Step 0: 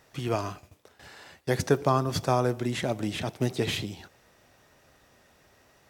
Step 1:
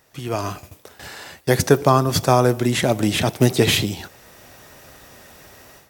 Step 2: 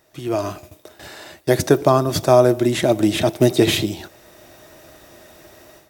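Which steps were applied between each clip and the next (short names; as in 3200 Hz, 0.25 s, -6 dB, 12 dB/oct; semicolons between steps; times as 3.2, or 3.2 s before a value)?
high shelf 9700 Hz +11 dB; AGC gain up to 14 dB
small resonant body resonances 340/620/3700 Hz, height 11 dB, ringing for 55 ms; gain -2.5 dB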